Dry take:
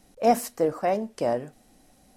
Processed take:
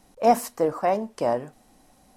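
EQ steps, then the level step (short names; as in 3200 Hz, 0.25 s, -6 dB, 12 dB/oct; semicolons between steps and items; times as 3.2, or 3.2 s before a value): bell 1000 Hz +7.5 dB 0.68 oct; 0.0 dB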